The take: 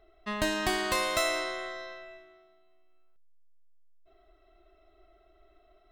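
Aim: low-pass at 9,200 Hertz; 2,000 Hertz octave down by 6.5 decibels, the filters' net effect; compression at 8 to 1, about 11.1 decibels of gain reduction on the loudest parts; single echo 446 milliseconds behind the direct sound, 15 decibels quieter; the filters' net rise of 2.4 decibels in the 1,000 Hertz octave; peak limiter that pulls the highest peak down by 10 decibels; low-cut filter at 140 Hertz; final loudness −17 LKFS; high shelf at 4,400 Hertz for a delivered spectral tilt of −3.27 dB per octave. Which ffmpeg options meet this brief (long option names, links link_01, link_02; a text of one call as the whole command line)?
ffmpeg -i in.wav -af "highpass=140,lowpass=9200,equalizer=frequency=1000:width_type=o:gain=5.5,equalizer=frequency=2000:width_type=o:gain=-9,highshelf=frequency=4400:gain=-4.5,acompressor=threshold=-36dB:ratio=8,alimiter=level_in=10dB:limit=-24dB:level=0:latency=1,volume=-10dB,aecho=1:1:446:0.178,volume=26dB" out.wav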